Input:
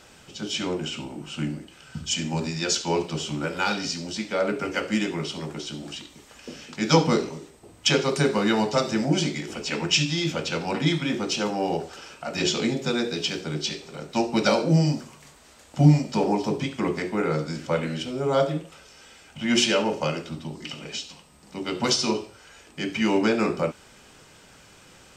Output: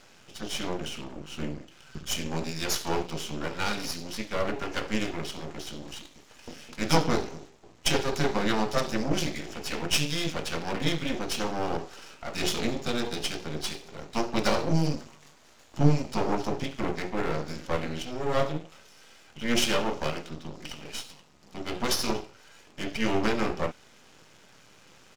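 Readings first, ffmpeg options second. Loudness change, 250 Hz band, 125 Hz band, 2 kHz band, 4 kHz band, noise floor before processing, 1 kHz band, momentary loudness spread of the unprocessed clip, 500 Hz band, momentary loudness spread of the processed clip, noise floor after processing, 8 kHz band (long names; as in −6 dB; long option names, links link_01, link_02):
−5.0 dB, −6.0 dB, −6.0 dB, −3.5 dB, −5.0 dB, −52 dBFS, −3.0 dB, 15 LU, −5.0 dB, 15 LU, −56 dBFS, −4.0 dB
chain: -af "highpass=91,aresample=16000,aresample=44100,aeval=exprs='max(val(0),0)':channel_layout=same"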